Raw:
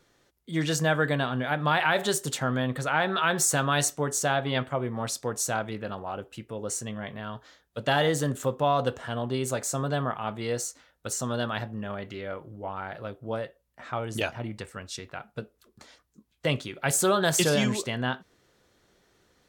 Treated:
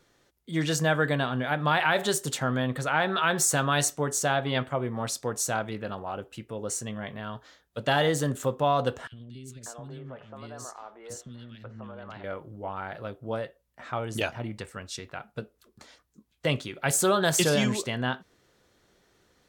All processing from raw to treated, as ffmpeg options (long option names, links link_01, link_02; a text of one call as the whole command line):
ffmpeg -i in.wav -filter_complex "[0:a]asettb=1/sr,asplit=3[link_01][link_02][link_03];[link_01]atrim=end=9.074[link_04];[link_02]atrim=start=9.07:end=12.24,asetpts=PTS-STARTPTS,afade=type=in:duration=0.004:curve=qsin,afade=type=out:start_time=3.166:duration=0.004:curve=qsin,aemphasis=mode=reproduction:type=cd,acompressor=threshold=-38dB:ratio=4:attack=3.2:release=140:knee=1:detection=peak,acrossover=split=340|2200[link_05][link_06][link_07];[link_05]adelay=50[link_08];[link_06]adelay=590[link_09];[link_08][link_09][link_07]amix=inputs=3:normalize=0,atrim=end_sample=139797[link_10];[link_03]atrim=start=12.236[link_11];[link_04][link_10]acrossfade=duration=0.004:curve1=hsin:curve2=qsin[link_12];[link_12][link_11]acrossfade=duration=0.004:curve1=qsin:curve2=hsin" out.wav